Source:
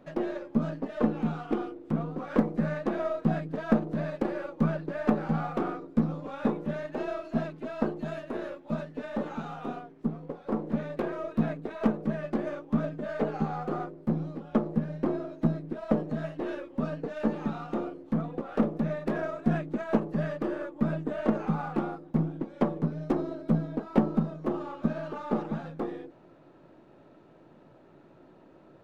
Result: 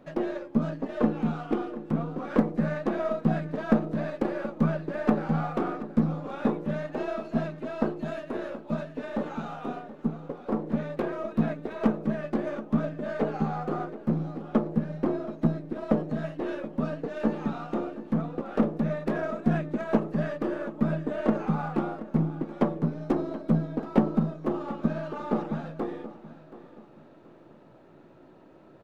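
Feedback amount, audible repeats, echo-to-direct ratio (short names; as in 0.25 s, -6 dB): 35%, 3, -15.0 dB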